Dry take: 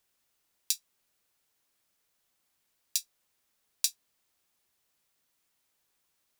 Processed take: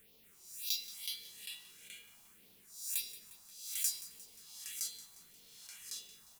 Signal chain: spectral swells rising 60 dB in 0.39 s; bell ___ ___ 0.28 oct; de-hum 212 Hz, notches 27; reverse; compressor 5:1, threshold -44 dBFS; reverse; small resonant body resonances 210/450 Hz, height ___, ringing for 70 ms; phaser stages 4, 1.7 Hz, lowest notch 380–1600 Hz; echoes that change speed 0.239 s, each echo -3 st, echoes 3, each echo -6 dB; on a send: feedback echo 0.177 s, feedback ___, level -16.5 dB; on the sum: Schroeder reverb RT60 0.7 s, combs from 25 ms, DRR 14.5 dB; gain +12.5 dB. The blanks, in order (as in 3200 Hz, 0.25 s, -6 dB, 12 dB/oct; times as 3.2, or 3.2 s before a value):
440 Hz, +3.5 dB, 11 dB, 56%